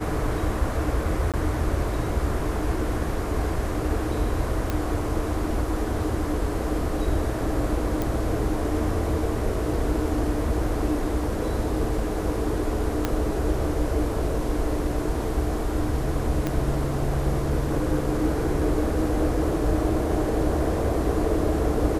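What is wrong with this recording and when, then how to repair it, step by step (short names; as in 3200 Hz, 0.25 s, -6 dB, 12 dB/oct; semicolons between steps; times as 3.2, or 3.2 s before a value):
1.32–1.34 gap 17 ms
4.7 pop -12 dBFS
8.02 pop
13.05 pop -9 dBFS
16.47 pop -12 dBFS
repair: de-click; interpolate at 1.32, 17 ms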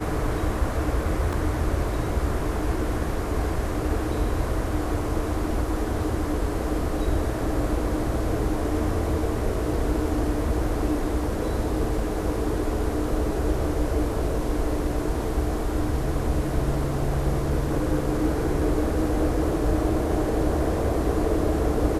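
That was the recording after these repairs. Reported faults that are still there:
13.05 pop
16.47 pop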